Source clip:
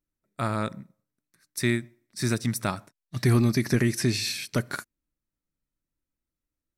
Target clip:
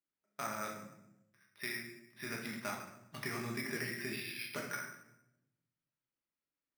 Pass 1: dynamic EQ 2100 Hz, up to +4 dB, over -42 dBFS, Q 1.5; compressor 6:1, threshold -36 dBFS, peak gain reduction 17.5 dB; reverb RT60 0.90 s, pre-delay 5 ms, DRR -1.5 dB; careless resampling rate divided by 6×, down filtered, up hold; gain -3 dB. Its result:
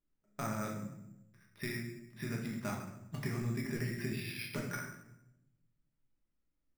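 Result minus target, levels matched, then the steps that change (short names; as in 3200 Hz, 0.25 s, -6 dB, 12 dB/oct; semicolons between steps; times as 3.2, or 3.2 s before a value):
1000 Hz band -3.0 dB
add after dynamic EQ: HPF 870 Hz 6 dB/oct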